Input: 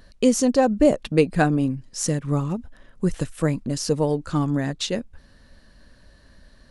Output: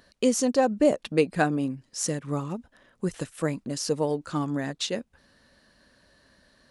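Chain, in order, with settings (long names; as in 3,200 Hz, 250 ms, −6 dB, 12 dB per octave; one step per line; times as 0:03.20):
high-pass filter 260 Hz 6 dB per octave
level −2.5 dB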